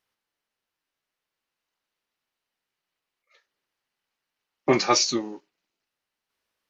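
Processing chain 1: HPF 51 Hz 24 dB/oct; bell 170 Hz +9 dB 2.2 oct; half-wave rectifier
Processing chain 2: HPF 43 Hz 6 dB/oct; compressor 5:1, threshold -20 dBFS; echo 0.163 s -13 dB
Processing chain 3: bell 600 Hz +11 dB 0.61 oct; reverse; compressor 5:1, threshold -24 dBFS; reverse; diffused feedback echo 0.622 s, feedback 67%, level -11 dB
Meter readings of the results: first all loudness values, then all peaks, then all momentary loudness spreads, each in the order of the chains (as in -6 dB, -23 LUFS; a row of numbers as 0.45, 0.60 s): -25.0, -26.5, -31.0 LUFS; -4.5, -10.0, -12.5 dBFS; 11, 14, 15 LU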